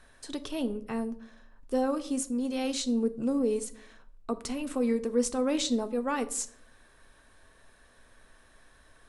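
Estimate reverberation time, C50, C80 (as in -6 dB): 0.60 s, 17.0 dB, 20.5 dB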